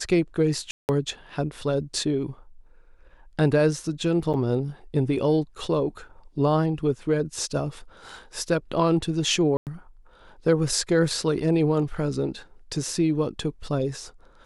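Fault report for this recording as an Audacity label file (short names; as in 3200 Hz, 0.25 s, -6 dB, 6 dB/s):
0.710000	0.890000	gap 0.179 s
4.330000	4.340000	gap 8.1 ms
9.570000	9.670000	gap 98 ms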